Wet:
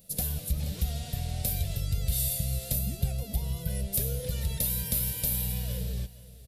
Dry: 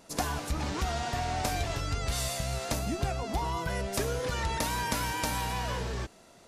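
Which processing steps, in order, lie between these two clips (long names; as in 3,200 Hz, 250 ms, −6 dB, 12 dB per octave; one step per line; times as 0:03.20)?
drawn EQ curve 180 Hz 0 dB, 320 Hz −21 dB, 520 Hz −7 dB, 1,000 Hz −29 dB, 3,700 Hz −5 dB, 6,400 Hz −10 dB, 13,000 Hz +13 dB
on a send: single-tap delay 475 ms −17.5 dB
on the sum: level +3.5 dB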